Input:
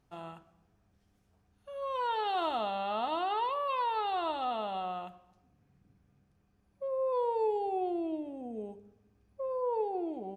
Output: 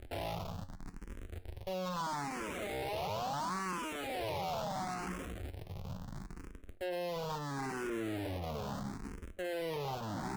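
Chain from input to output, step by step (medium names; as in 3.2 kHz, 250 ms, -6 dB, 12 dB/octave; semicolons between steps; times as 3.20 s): cycle switcher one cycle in 3, muted; treble shelf 3.2 kHz -11.5 dB; reverse; compression 12:1, threshold -42 dBFS, peak gain reduction 15 dB; reverse; waveshaping leveller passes 3; in parallel at -4 dB: Schmitt trigger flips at -56 dBFS; on the sum: feedback comb 91 Hz, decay 0.22 s, harmonics all, mix 60%; valve stage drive 46 dB, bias 0.3; barber-pole phaser +0.74 Hz; trim +12.5 dB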